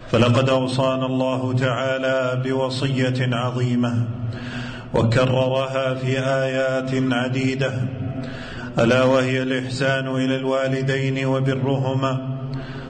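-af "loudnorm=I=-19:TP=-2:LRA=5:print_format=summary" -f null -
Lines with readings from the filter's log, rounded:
Input Integrated:    -21.5 LUFS
Input True Peak:      -8.9 dBTP
Input LRA:             1.8 LU
Input Threshold:     -31.5 LUFS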